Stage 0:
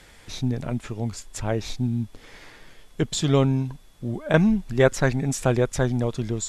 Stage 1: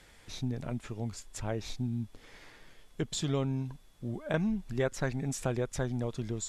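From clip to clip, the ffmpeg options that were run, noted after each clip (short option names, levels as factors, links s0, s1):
-af "acompressor=threshold=0.0794:ratio=2,volume=0.422"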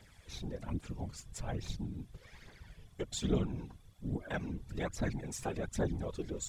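-af "aphaser=in_gain=1:out_gain=1:delay=3:decay=0.62:speed=1.2:type=triangular,afftfilt=real='hypot(re,im)*cos(2*PI*random(0))':imag='hypot(re,im)*sin(2*PI*random(1))':win_size=512:overlap=0.75"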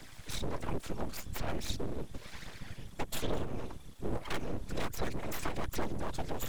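-filter_complex "[0:a]aeval=exprs='abs(val(0))':c=same,acrossover=split=110|340|7100[s0][s1][s2][s3];[s0]acompressor=threshold=0.00794:ratio=4[s4];[s1]acompressor=threshold=0.00178:ratio=4[s5];[s2]acompressor=threshold=0.00355:ratio=4[s6];[s3]acompressor=threshold=0.00141:ratio=4[s7];[s4][s5][s6][s7]amix=inputs=4:normalize=0,volume=3.55"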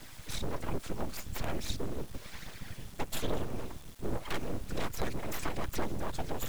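-af "acrusher=bits=6:dc=4:mix=0:aa=0.000001,volume=1.12"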